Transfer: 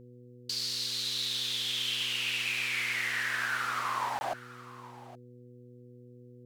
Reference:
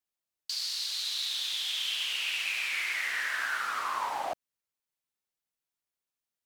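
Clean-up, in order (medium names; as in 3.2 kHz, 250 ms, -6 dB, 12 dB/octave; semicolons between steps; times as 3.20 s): clip repair -21.5 dBFS; de-hum 122.7 Hz, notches 4; interpolate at 4.19 s, 20 ms; inverse comb 819 ms -17 dB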